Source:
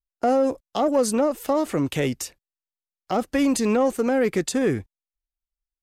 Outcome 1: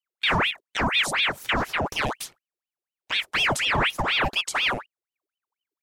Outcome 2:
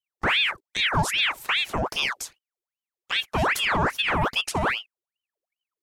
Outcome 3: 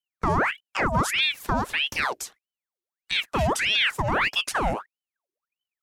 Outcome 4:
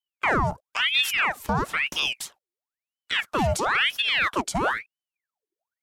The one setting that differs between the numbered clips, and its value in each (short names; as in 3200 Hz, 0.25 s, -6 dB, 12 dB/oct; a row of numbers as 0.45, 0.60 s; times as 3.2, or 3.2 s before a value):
ring modulator with a swept carrier, at: 4.1, 2.5, 1.6, 1 Hz